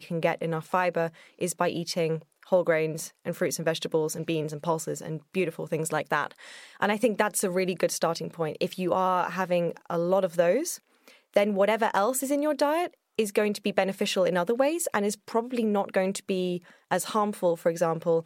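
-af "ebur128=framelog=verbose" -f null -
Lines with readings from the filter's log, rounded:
Integrated loudness:
  I:         -27.4 LUFS
  Threshold: -37.5 LUFS
Loudness range:
  LRA:         3.3 LU
  Threshold: -47.5 LUFS
  LRA low:   -29.4 LUFS
  LRA high:  -26.1 LUFS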